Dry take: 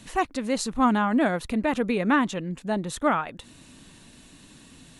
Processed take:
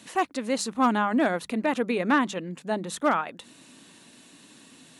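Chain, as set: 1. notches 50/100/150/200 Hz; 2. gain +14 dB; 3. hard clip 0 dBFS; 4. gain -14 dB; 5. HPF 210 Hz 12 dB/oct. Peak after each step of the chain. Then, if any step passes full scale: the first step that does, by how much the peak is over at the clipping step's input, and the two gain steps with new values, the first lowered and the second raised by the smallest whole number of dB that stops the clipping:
-10.5, +3.5, 0.0, -14.0, -10.0 dBFS; step 2, 3.5 dB; step 2 +10 dB, step 4 -10 dB

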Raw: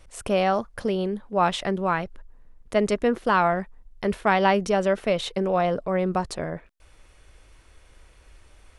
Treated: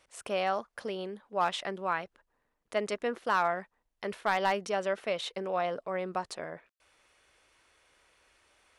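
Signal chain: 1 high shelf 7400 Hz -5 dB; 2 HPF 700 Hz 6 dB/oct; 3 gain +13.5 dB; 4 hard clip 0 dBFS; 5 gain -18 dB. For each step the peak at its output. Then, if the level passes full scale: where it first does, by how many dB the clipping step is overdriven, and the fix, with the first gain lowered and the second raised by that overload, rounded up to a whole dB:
-7.5, -7.5, +6.0, 0.0, -18.0 dBFS; step 3, 6.0 dB; step 3 +7.5 dB, step 5 -12 dB

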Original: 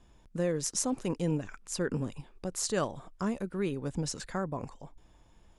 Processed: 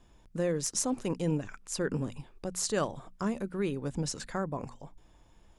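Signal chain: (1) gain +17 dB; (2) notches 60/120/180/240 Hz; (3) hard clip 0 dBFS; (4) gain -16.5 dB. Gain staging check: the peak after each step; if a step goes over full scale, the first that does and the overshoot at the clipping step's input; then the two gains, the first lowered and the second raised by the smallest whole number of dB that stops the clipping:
+3.5, +3.5, 0.0, -16.5 dBFS; step 1, 3.5 dB; step 1 +13 dB, step 4 -12.5 dB

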